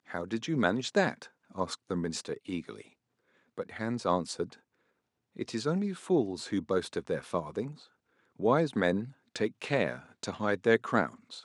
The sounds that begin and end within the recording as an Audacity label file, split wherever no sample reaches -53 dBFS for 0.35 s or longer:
3.580000	4.590000	sound
5.360000	7.860000	sound